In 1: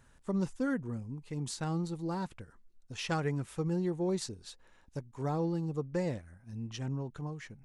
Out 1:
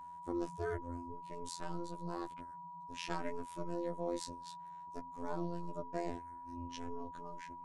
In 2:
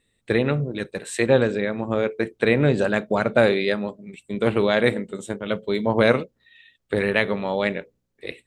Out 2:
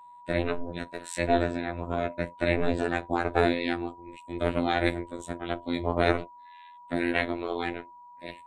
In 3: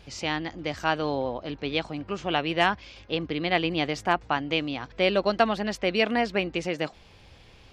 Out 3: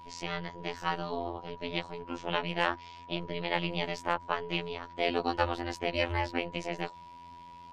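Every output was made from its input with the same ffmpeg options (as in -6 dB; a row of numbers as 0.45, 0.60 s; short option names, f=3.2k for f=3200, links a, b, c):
-af "aeval=exprs='val(0)*sin(2*PI*150*n/s)':c=same,afftfilt=real='hypot(re,im)*cos(PI*b)':imag='0':win_size=2048:overlap=0.75,aeval=exprs='val(0)+0.00447*sin(2*PI*970*n/s)':c=same"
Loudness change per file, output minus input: -7.5, -7.0, -6.5 LU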